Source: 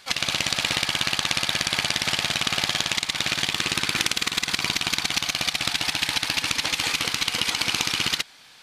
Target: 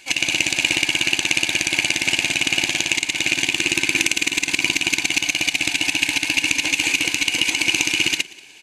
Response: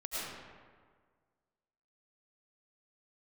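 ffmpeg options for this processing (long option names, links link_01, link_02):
-filter_complex "[0:a]superequalizer=6b=3.55:10b=0.316:12b=3.16:15b=2.51:16b=1.58,asplit=4[link_01][link_02][link_03][link_04];[link_02]adelay=184,afreqshift=36,volume=-22dB[link_05];[link_03]adelay=368,afreqshift=72,volume=-30.4dB[link_06];[link_04]adelay=552,afreqshift=108,volume=-38.8dB[link_07];[link_01][link_05][link_06][link_07]amix=inputs=4:normalize=0,volume=-1dB"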